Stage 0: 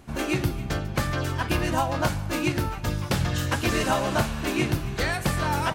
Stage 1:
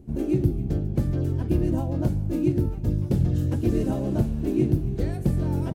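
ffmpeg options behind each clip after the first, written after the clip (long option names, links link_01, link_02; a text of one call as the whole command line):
ffmpeg -i in.wav -af "firequalizer=gain_entry='entry(370,0);entry(560,-10);entry(1100,-25);entry(12000,-16)':delay=0.05:min_phase=1,volume=4dB" out.wav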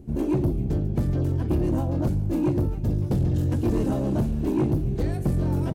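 ffmpeg -i in.wav -af "asoftclip=type=tanh:threshold=-20dB,volume=3dB" out.wav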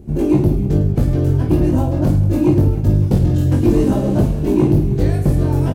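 ffmpeg -i in.wav -af "aeval=exprs='0.141*(cos(1*acos(clip(val(0)/0.141,-1,1)))-cos(1*PI/2))+0.01*(cos(3*acos(clip(val(0)/0.141,-1,1)))-cos(3*PI/2))':channel_layout=same,aecho=1:1:20|52|103.2|185.1|316.2:0.631|0.398|0.251|0.158|0.1,volume=7.5dB" out.wav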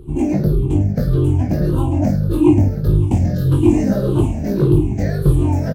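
ffmpeg -i in.wav -af "afftfilt=real='re*pow(10,17/40*sin(2*PI*(0.63*log(max(b,1)*sr/1024/100)/log(2)-(-1.7)*(pts-256)/sr)))':imag='im*pow(10,17/40*sin(2*PI*(0.63*log(max(b,1)*sr/1024/100)/log(2)-(-1.7)*(pts-256)/sr)))':win_size=1024:overlap=0.75,volume=-3.5dB" out.wav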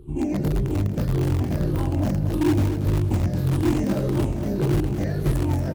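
ffmpeg -i in.wav -filter_complex "[0:a]asplit=2[link_01][link_02];[link_02]aeval=exprs='(mod(2.82*val(0)+1,2)-1)/2.82':channel_layout=same,volume=-11dB[link_03];[link_01][link_03]amix=inputs=2:normalize=0,aecho=1:1:234|468|702|936|1170|1404:0.355|0.188|0.0997|0.0528|0.028|0.0148,volume=-9dB" out.wav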